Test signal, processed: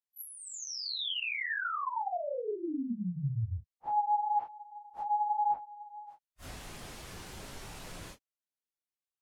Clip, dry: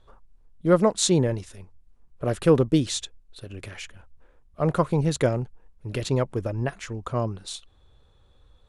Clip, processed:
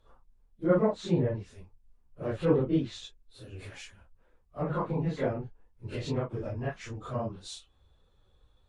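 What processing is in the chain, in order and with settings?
phase scrambler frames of 0.1 s; treble ducked by the level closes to 2200 Hz, closed at -20 dBFS; gain -6.5 dB

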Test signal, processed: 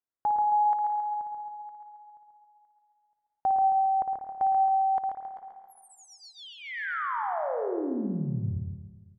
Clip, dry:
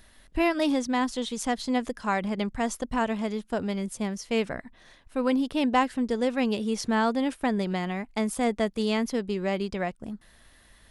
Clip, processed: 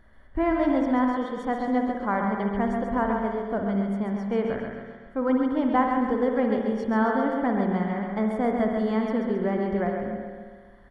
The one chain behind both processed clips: polynomial smoothing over 41 samples; feedback echo 0.135 s, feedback 51%, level -5.5 dB; spring tank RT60 1.4 s, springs 55 ms, chirp 75 ms, DRR 4 dB

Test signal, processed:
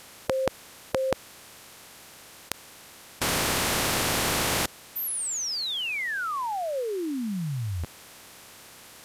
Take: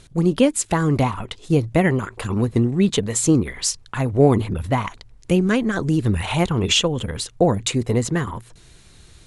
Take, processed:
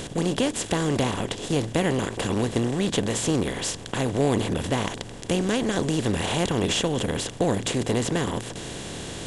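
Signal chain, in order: per-bin compression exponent 0.4; gain -11 dB

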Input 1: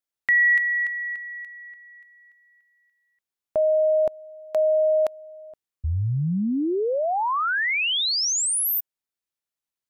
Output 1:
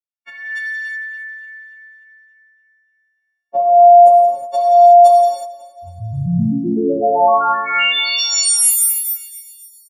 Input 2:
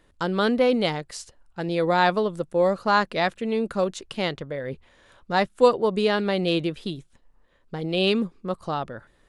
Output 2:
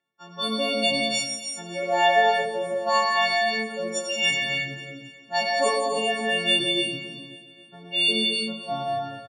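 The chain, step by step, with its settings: frequency quantiser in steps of 4 st; HPF 120 Hz 24 dB/oct; spectral noise reduction 12 dB; low-pass opened by the level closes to 2500 Hz, open at -15 dBFS; high shelf 4100 Hz +12 dB; AGC gain up to 15.5 dB; small resonant body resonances 680/1600 Hz, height 7 dB; on a send: feedback echo 0.271 s, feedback 52%, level -17 dB; on the sum: non-linear reverb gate 0.39 s flat, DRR -2 dB; gain -11.5 dB

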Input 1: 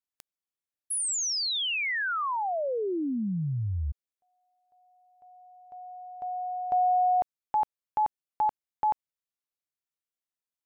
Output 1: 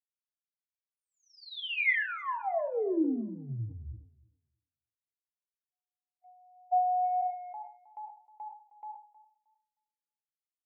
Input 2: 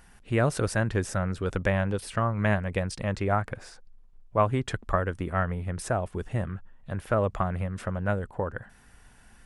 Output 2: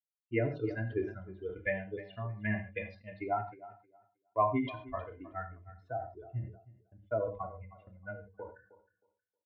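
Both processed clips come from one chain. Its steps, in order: per-bin expansion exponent 3; gate -55 dBFS, range -19 dB; speaker cabinet 120–3400 Hz, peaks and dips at 130 Hz +5 dB, 290 Hz +5 dB, 500 Hz +6 dB, 1300 Hz -8 dB, 2100 Hz +9 dB; notches 50/100/150/200/250/300/350 Hz; comb 2.9 ms, depth 81%; AGC gain up to 3 dB; air absorption 280 m; on a send: tape echo 0.313 s, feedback 20%, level -16.5 dB, low-pass 2400 Hz; on the sum: non-linear reverb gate 0.16 s falling, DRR 6 dB; sustainer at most 120 dB/s; gain -6 dB

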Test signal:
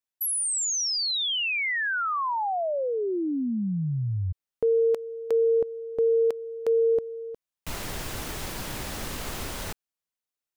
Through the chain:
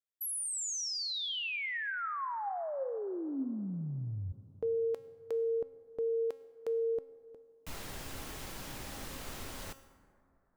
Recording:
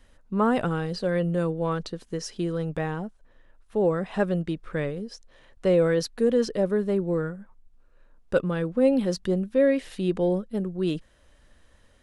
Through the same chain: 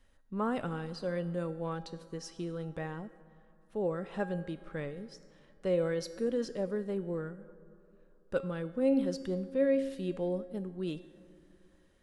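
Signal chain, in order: resonator 270 Hz, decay 0.78 s, mix 70%; plate-style reverb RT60 3.1 s, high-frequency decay 0.3×, pre-delay 85 ms, DRR 18 dB

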